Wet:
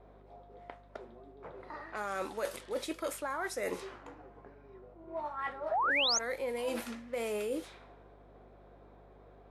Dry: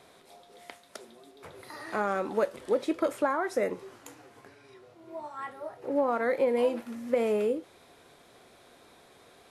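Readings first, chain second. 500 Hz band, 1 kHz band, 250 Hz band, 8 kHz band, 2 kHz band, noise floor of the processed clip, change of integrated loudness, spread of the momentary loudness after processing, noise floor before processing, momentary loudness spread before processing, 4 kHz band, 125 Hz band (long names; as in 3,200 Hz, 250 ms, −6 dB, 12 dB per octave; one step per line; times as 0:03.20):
−8.5 dB, −3.0 dB, −9.5 dB, +10.0 dB, +1.0 dB, −57 dBFS, −5.0 dB, 23 LU, −58 dBFS, 21 LU, +12.0 dB, can't be measured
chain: low-pass that shuts in the quiet parts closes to 560 Hz, open at −27.5 dBFS
spectral tilt +3 dB per octave
reversed playback
downward compressor 12 to 1, threshold −37 dBFS, peak gain reduction 14.5 dB
reversed playback
mains hum 50 Hz, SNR 20 dB
sound drawn into the spectrogram rise, 0:05.71–0:06.19, 590–6,900 Hz −34 dBFS
level +4.5 dB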